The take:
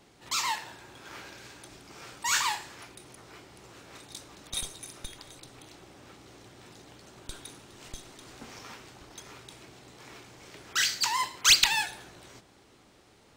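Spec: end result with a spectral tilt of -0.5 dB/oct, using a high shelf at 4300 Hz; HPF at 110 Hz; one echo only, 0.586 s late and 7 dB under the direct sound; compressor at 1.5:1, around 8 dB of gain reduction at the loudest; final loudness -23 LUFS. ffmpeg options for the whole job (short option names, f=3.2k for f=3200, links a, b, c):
-af "highpass=110,highshelf=f=4.3k:g=7.5,acompressor=threshold=-34dB:ratio=1.5,aecho=1:1:586:0.447,volume=8.5dB"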